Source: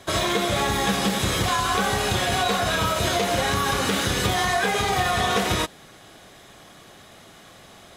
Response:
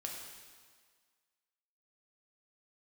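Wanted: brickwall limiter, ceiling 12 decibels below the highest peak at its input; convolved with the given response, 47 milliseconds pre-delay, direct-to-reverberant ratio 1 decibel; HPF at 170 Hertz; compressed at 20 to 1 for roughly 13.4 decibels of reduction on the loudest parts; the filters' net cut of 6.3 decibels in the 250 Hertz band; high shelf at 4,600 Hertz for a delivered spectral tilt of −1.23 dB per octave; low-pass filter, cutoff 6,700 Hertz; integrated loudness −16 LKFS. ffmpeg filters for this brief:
-filter_complex "[0:a]highpass=170,lowpass=6700,equalizer=frequency=250:width_type=o:gain=-7.5,highshelf=frequency=4600:gain=8,acompressor=threshold=-32dB:ratio=20,alimiter=level_in=8.5dB:limit=-24dB:level=0:latency=1,volume=-8.5dB,asplit=2[link_01][link_02];[1:a]atrim=start_sample=2205,adelay=47[link_03];[link_02][link_03]afir=irnorm=-1:irlink=0,volume=-0.5dB[link_04];[link_01][link_04]amix=inputs=2:normalize=0,volume=22.5dB"

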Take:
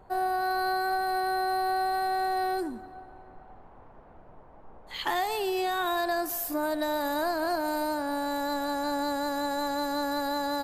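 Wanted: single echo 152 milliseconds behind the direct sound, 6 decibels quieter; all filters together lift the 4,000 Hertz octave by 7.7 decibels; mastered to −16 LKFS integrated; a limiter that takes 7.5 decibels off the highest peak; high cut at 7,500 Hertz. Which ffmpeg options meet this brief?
ffmpeg -i in.wav -af "lowpass=7500,equalizer=frequency=4000:width_type=o:gain=8.5,alimiter=limit=-23.5dB:level=0:latency=1,aecho=1:1:152:0.501,volume=14dB" out.wav

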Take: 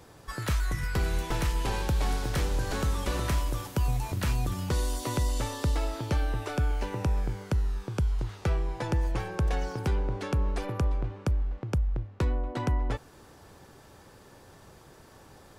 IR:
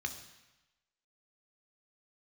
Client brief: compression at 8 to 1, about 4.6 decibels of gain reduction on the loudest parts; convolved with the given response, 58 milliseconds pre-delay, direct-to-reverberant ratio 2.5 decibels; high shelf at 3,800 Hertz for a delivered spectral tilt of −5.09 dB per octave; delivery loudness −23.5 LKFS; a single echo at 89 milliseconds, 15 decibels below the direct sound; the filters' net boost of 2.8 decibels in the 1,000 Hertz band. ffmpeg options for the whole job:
-filter_complex "[0:a]equalizer=frequency=1000:width_type=o:gain=3,highshelf=frequency=3800:gain=6,acompressor=threshold=-27dB:ratio=8,aecho=1:1:89:0.178,asplit=2[link_01][link_02];[1:a]atrim=start_sample=2205,adelay=58[link_03];[link_02][link_03]afir=irnorm=-1:irlink=0,volume=-4dB[link_04];[link_01][link_04]amix=inputs=2:normalize=0,volume=8dB"

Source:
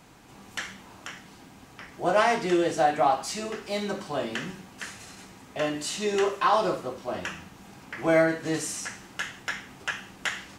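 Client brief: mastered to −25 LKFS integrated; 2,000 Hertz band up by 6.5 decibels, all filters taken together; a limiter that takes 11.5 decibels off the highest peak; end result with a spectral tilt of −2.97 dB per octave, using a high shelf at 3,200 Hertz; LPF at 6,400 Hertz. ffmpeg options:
ffmpeg -i in.wav -af "lowpass=6400,equalizer=frequency=2000:width_type=o:gain=6.5,highshelf=frequency=3200:gain=5.5,volume=4.5dB,alimiter=limit=-12.5dB:level=0:latency=1" out.wav

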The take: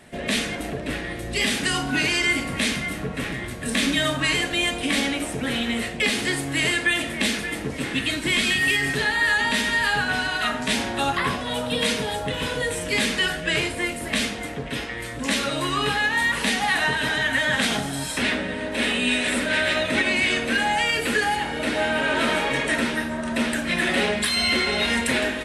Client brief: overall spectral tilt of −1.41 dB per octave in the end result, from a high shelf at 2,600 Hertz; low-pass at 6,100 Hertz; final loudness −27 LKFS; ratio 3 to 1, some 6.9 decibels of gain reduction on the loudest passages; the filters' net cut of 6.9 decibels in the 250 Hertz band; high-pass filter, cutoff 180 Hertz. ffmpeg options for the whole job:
ffmpeg -i in.wav -af "highpass=180,lowpass=6100,equalizer=frequency=250:width_type=o:gain=-7,highshelf=frequency=2600:gain=6.5,acompressor=threshold=-25dB:ratio=3,volume=-1dB" out.wav

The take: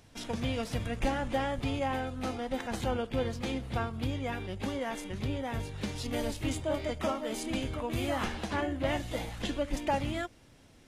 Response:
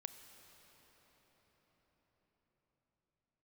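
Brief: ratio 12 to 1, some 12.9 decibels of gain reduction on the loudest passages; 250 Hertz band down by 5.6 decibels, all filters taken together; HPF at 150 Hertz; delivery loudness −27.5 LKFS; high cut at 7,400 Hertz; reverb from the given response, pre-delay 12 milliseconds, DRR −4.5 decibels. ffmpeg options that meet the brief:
-filter_complex "[0:a]highpass=150,lowpass=7400,equalizer=frequency=250:width_type=o:gain=-6,acompressor=threshold=-39dB:ratio=12,asplit=2[link_01][link_02];[1:a]atrim=start_sample=2205,adelay=12[link_03];[link_02][link_03]afir=irnorm=-1:irlink=0,volume=9dB[link_04];[link_01][link_04]amix=inputs=2:normalize=0,volume=10.5dB"

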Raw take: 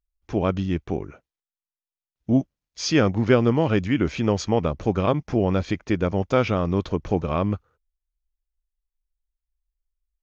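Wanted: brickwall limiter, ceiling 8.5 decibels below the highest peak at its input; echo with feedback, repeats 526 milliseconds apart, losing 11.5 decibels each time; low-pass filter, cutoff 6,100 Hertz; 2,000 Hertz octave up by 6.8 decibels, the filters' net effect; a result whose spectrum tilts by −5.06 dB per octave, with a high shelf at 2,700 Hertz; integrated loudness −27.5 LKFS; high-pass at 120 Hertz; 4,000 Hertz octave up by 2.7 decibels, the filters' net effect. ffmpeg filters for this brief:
ffmpeg -i in.wav -af "highpass=120,lowpass=6100,equalizer=frequency=2000:width_type=o:gain=9,highshelf=frequency=2700:gain=-3,equalizer=frequency=4000:width_type=o:gain=4,alimiter=limit=-9.5dB:level=0:latency=1,aecho=1:1:526|1052|1578:0.266|0.0718|0.0194,volume=-3dB" out.wav

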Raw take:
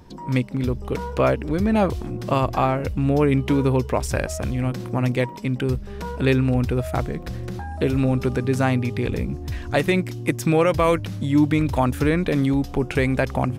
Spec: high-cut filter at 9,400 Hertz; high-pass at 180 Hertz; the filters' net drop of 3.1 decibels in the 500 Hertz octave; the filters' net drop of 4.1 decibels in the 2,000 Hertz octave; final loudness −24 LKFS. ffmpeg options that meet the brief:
ffmpeg -i in.wav -af "highpass=180,lowpass=9400,equalizer=frequency=500:width_type=o:gain=-3.5,equalizer=frequency=2000:width_type=o:gain=-5,volume=1.5dB" out.wav

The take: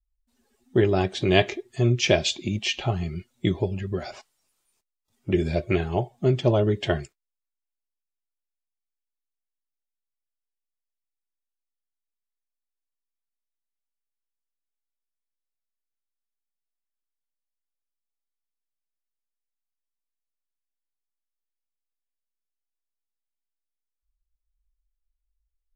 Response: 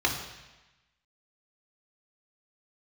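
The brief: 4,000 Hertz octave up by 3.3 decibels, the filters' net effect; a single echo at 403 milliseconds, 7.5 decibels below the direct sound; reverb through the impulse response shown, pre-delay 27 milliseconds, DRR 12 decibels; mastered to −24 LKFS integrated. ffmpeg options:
-filter_complex "[0:a]equalizer=frequency=4000:width_type=o:gain=4.5,aecho=1:1:403:0.422,asplit=2[link_01][link_02];[1:a]atrim=start_sample=2205,adelay=27[link_03];[link_02][link_03]afir=irnorm=-1:irlink=0,volume=-24dB[link_04];[link_01][link_04]amix=inputs=2:normalize=0,volume=-0.5dB"

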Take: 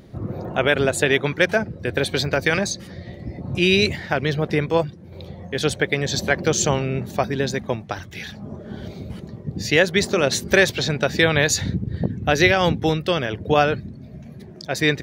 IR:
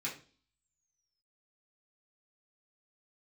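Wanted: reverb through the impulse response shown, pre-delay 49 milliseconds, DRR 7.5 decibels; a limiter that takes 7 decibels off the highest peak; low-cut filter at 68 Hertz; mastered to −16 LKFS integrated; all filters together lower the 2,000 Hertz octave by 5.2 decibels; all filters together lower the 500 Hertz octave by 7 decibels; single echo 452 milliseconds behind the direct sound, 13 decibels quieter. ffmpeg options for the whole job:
-filter_complex "[0:a]highpass=68,equalizer=frequency=500:width_type=o:gain=-8.5,equalizer=frequency=2000:width_type=o:gain=-6,alimiter=limit=-13dB:level=0:latency=1,aecho=1:1:452:0.224,asplit=2[link_01][link_02];[1:a]atrim=start_sample=2205,adelay=49[link_03];[link_02][link_03]afir=irnorm=-1:irlink=0,volume=-10dB[link_04];[link_01][link_04]amix=inputs=2:normalize=0,volume=10dB"

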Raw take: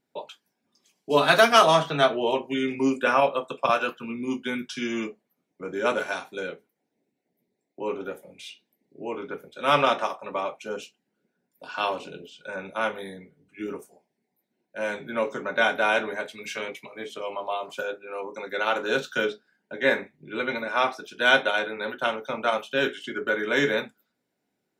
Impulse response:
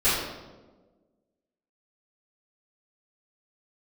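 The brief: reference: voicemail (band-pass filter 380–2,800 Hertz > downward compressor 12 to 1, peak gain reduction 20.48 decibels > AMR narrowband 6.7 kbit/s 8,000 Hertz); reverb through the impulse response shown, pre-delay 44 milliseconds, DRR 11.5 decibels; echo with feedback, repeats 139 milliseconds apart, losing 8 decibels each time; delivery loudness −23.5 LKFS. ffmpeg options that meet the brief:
-filter_complex "[0:a]aecho=1:1:139|278|417|556|695:0.398|0.159|0.0637|0.0255|0.0102,asplit=2[link_01][link_02];[1:a]atrim=start_sample=2205,adelay=44[link_03];[link_02][link_03]afir=irnorm=-1:irlink=0,volume=-27.5dB[link_04];[link_01][link_04]amix=inputs=2:normalize=0,highpass=380,lowpass=2800,acompressor=threshold=-32dB:ratio=12,volume=15.5dB" -ar 8000 -c:a libopencore_amrnb -b:a 6700

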